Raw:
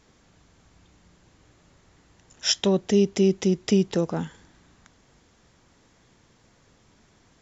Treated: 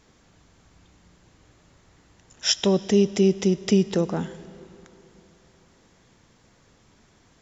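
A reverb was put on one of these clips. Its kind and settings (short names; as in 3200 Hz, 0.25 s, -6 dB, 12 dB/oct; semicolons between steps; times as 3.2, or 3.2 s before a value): digital reverb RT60 3.3 s, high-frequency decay 0.8×, pre-delay 40 ms, DRR 17 dB; gain +1 dB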